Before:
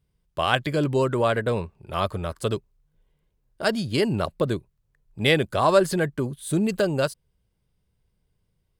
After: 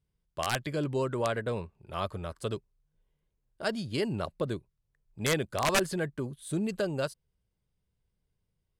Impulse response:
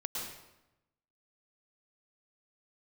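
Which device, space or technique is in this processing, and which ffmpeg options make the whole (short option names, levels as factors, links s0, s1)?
overflowing digital effects unit: -af "aeval=exprs='(mod(3.16*val(0)+1,2)-1)/3.16':c=same,lowpass=12000,volume=0.398"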